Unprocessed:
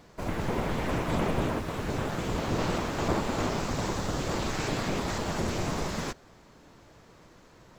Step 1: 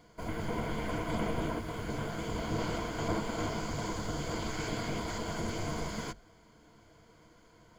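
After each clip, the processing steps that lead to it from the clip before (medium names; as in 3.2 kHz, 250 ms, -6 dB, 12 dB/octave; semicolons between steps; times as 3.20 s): rippled EQ curve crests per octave 1.8, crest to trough 10 dB; trim -6.5 dB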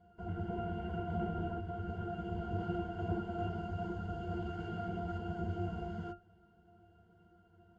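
CVSD coder 64 kbps; pitch-class resonator F, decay 0.17 s; trim +8 dB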